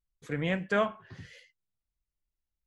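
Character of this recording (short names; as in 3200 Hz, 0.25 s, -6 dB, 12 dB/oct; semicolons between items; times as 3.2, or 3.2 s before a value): noise floor -89 dBFS; spectral tilt -4.5 dB/oct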